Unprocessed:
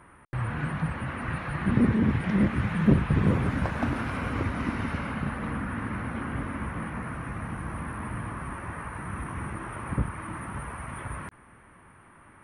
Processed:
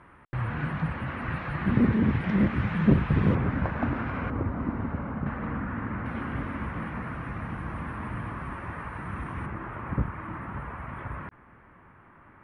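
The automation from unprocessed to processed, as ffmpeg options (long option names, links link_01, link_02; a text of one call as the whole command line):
ffmpeg -i in.wav -af "asetnsamples=nb_out_samples=441:pad=0,asendcmd='3.35 lowpass f 2200;4.3 lowpass f 1100;5.26 lowpass f 2000;6.06 lowpass f 4600;9.46 lowpass f 2300',lowpass=4400" out.wav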